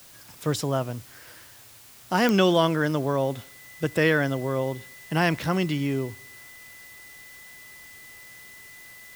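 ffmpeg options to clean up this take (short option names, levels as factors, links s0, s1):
-af "adeclick=t=4,bandreject=f=2000:w=30,afftdn=nr=22:nf=-49"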